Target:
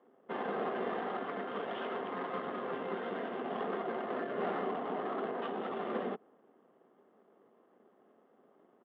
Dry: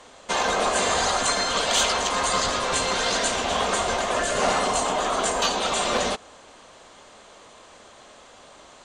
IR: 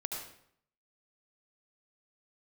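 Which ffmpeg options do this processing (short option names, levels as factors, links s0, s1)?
-af "aeval=exprs='(tanh(8.91*val(0)+0.6)-tanh(0.6))/8.91':c=same,aresample=8000,aeval=exprs='sgn(val(0))*max(abs(val(0))-0.00112,0)':c=same,aresample=44100,adynamicsmooth=sensitivity=1:basefreq=1100,highpass=f=180:w=0.5412,highpass=f=180:w=1.3066,equalizer=f=220:t=q:w=4:g=3,equalizer=f=390:t=q:w=4:g=6,equalizer=f=590:t=q:w=4:g=-6,equalizer=f=960:t=q:w=4:g=-7,equalizer=f=1500:t=q:w=4:g=-4,equalizer=f=2400:t=q:w=4:g=-9,lowpass=f=3000:w=0.5412,lowpass=f=3000:w=1.3066,volume=0.562"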